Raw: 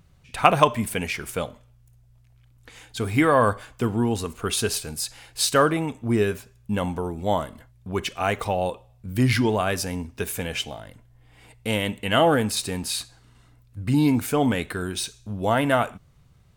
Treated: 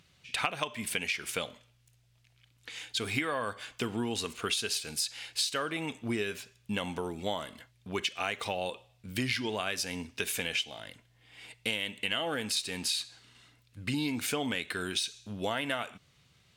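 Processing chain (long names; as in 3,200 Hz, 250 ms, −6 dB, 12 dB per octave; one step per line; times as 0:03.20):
meter weighting curve D
downward compressor 8 to 1, threshold −24 dBFS, peak gain reduction 17.5 dB
level −4.5 dB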